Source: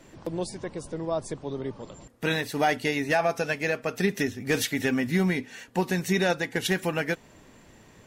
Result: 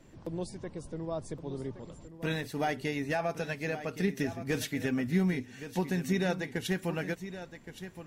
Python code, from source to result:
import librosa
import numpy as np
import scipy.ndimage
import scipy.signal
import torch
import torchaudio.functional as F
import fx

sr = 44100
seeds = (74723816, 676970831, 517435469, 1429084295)

p1 = fx.low_shelf(x, sr, hz=270.0, db=8.5)
p2 = p1 + fx.echo_single(p1, sr, ms=1119, db=-12.0, dry=0)
y = p2 * librosa.db_to_amplitude(-9.0)